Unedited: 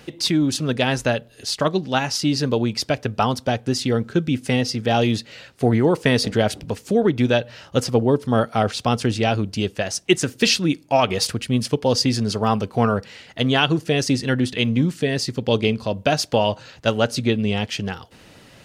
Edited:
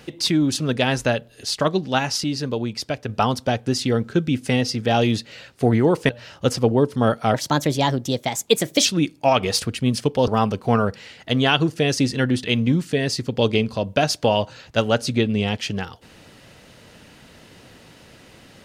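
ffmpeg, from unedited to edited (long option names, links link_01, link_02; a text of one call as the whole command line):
ffmpeg -i in.wav -filter_complex "[0:a]asplit=7[link_01][link_02][link_03][link_04][link_05][link_06][link_07];[link_01]atrim=end=2.242[link_08];[link_02]atrim=start=2.238:end=3.092,asetpts=PTS-STARTPTS,volume=-4.5dB[link_09];[link_03]atrim=start=3.088:end=6.092[link_10];[link_04]atrim=start=7.398:end=8.654[link_11];[link_05]atrim=start=8.65:end=10.53,asetpts=PTS-STARTPTS,asetrate=54684,aresample=44100,atrim=end_sample=66861,asetpts=PTS-STARTPTS[link_12];[link_06]atrim=start=10.526:end=11.952[link_13];[link_07]atrim=start=12.368[link_14];[link_08][link_09]acrossfade=duration=0.004:curve1=hsin:curve2=hsin[link_15];[link_15][link_10]acrossfade=duration=0.004:curve1=hsin:curve2=hsin[link_16];[link_16][link_11]acrossfade=duration=0.004:curve1=hsin:curve2=hsin[link_17];[link_17][link_12]acrossfade=duration=0.004:curve1=hsin:curve2=hsin[link_18];[link_18][link_13]acrossfade=duration=0.004:curve1=hsin:curve2=hsin[link_19];[link_19][link_14]acrossfade=duration=0.004:curve1=hsin:curve2=hsin" out.wav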